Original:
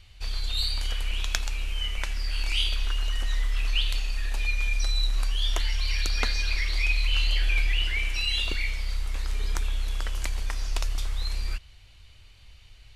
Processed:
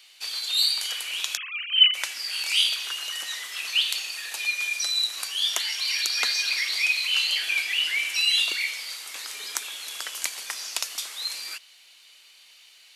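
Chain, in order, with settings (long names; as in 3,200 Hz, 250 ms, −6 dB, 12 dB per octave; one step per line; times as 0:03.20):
0:01.37–0:01.94: three sine waves on the formant tracks
Bessel high-pass filter 360 Hz, order 8
spectral tilt +3.5 dB per octave
boost into a limiter +5 dB
level −4.5 dB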